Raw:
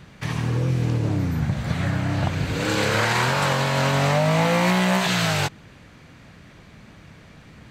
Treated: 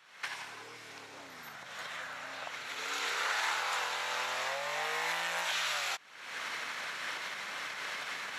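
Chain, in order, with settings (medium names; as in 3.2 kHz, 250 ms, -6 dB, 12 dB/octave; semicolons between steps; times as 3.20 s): recorder AGC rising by 61 dB/s; high-pass 1.1 kHz 12 dB/octave; speed mistake 48 kHz file played as 44.1 kHz; trim -8.5 dB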